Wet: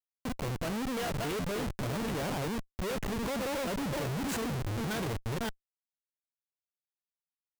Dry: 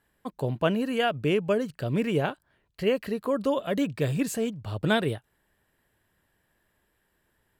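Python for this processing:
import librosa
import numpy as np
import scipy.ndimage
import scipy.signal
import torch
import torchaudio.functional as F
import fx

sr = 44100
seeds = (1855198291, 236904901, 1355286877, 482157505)

y = fx.reverse_delay(x, sr, ms=289, wet_db=-5.5)
y = fx.schmitt(y, sr, flips_db=-34.5)
y = y * librosa.db_to_amplitude(-5.0)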